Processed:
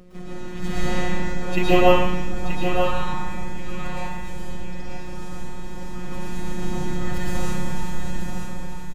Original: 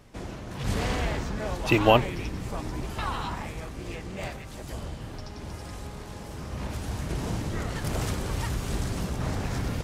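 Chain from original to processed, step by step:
fade-out on the ending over 1.80 s
bass and treble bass +9 dB, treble −4 dB
comb filter 4 ms, depth 83%
pitch vibrato 5.8 Hz 14 cents
hum with harmonics 100 Hz, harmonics 5, −45 dBFS −3 dB per octave
tempo change 1.1×
phases set to zero 180 Hz
on a send: single-tap delay 929 ms −7 dB
on the sum: dense smooth reverb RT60 0.81 s, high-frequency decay 0.9×, pre-delay 100 ms, DRR −6.5 dB
level −3 dB

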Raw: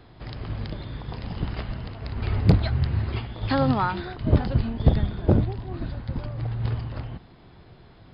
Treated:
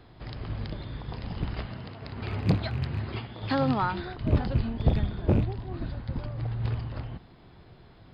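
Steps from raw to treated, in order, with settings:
loose part that buzzes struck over −19 dBFS, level −31 dBFS
0:01.67–0:03.82: high-pass filter 110 Hz 12 dB per octave
soft clipping −10 dBFS, distortion −17 dB
level −2.5 dB

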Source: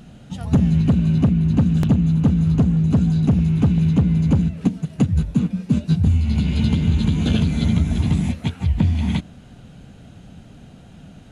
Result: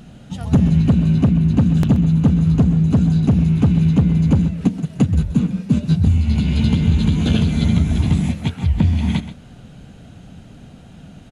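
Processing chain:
single-tap delay 129 ms −13.5 dB
level +2 dB

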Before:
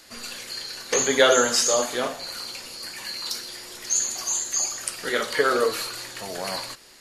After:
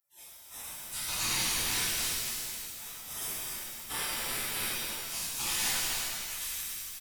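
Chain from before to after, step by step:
camcorder AGC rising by 6.4 dB per second
mains-hum notches 50/100/150/200/250/300/350 Hz
gate on every frequency bin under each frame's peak −30 dB weak
soft clipping −35.5 dBFS, distortion −13 dB
echo with shifted repeats 262 ms, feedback 33%, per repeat −67 Hz, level −6 dB
reverb with rising layers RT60 1.4 s, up +7 semitones, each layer −2 dB, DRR −9 dB

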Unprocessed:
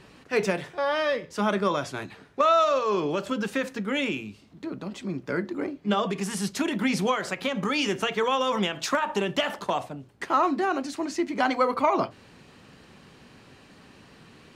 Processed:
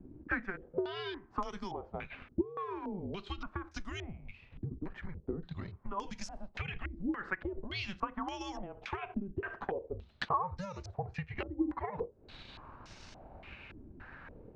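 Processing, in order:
frequency shifter −190 Hz
downward compressor 5 to 1, threshold −39 dBFS, peak gain reduction 19.5 dB
transient designer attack +4 dB, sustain −4 dB
low-pass on a step sequencer 3.5 Hz 310–5,800 Hz
level −2 dB

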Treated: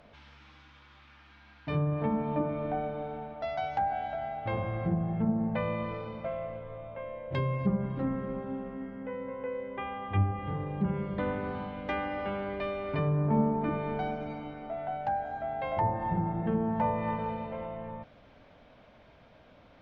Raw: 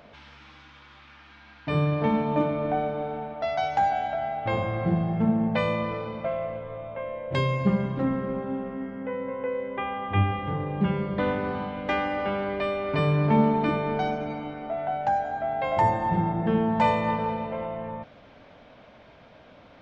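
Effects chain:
low-shelf EQ 84 Hz +8 dB
treble cut that deepens with the level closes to 1,200 Hz, closed at −17.5 dBFS
level −6.5 dB

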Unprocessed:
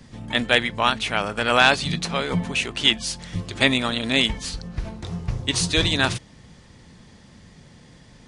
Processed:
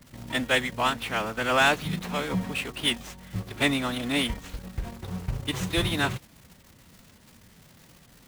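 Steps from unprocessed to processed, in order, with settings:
running median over 9 samples
surface crackle 470 per second −35 dBFS
in parallel at −7 dB: bit reduction 5 bits
on the sum: phase-vocoder pitch shift with formants kept +1 semitone
level −7 dB

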